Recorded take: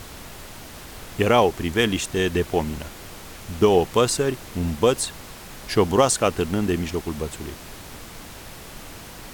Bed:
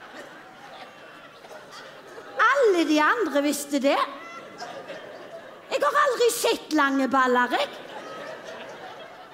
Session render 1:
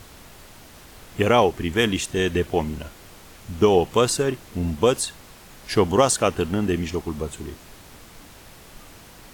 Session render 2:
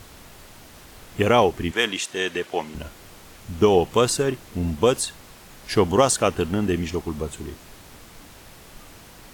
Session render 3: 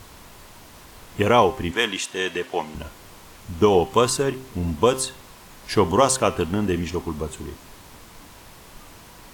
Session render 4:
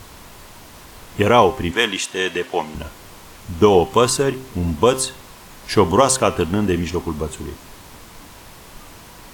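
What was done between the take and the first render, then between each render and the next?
noise reduction from a noise print 6 dB
0:01.71–0:02.75: meter weighting curve A
parametric band 1,000 Hz +6 dB 0.28 octaves; hum removal 130.7 Hz, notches 30
level +4 dB; brickwall limiter −1 dBFS, peak gain reduction 2.5 dB

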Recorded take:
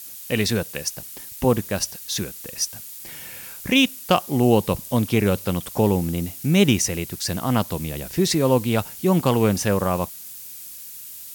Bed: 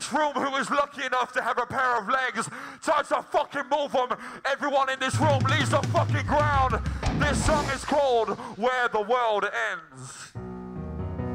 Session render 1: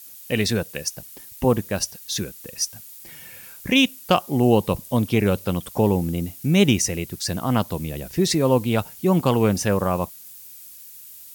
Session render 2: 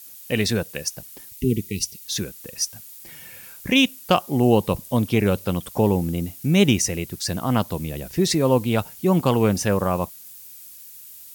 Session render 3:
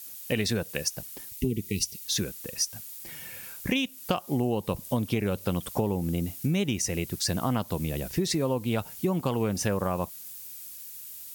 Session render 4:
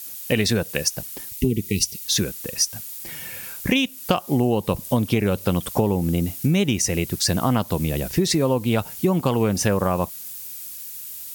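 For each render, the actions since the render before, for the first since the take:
broadband denoise 6 dB, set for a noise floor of −38 dBFS
0:01.33–0:02.04: linear-phase brick-wall band-stop 460–1,900 Hz
downward compressor 12 to 1, threshold −23 dBFS, peak gain reduction 13 dB
level +7 dB

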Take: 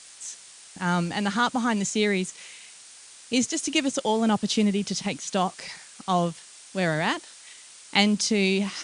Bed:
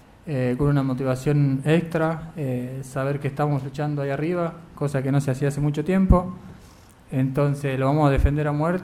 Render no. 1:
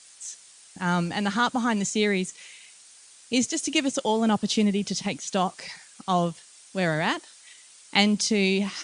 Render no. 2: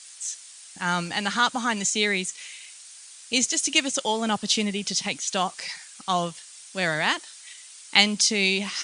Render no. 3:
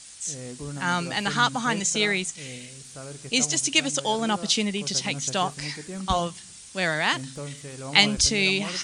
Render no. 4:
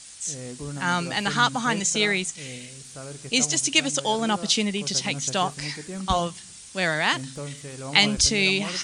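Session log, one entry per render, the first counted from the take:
broadband denoise 6 dB, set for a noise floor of −48 dBFS
tilt shelving filter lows −6 dB, about 850 Hz
mix in bed −15.5 dB
level +1 dB; brickwall limiter −3 dBFS, peak gain reduction 3 dB

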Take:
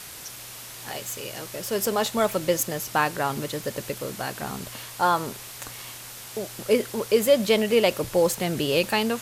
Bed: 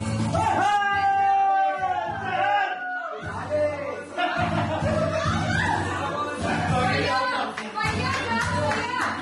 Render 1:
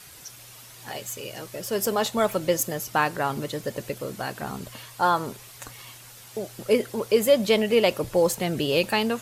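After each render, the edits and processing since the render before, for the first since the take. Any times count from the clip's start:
broadband denoise 8 dB, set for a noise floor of −41 dBFS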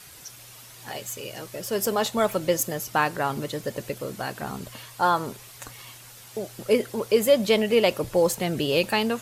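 no processing that can be heard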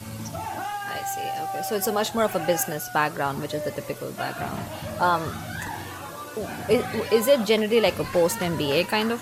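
mix in bed −10 dB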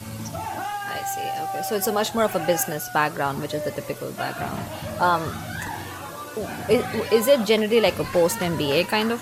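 level +1.5 dB

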